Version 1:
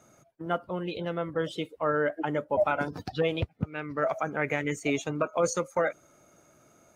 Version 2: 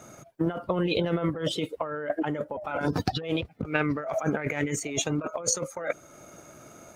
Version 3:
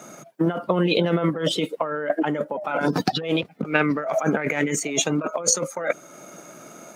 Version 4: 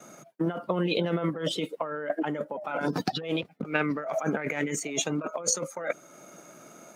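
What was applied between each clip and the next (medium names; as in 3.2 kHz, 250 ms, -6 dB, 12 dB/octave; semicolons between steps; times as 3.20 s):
compressor with a negative ratio -35 dBFS, ratio -1; transient shaper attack +3 dB, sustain -3 dB; trim +5.5 dB
Chebyshev high-pass 170 Hz, order 3; trim +6.5 dB
gate with hold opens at -36 dBFS; trim -6.5 dB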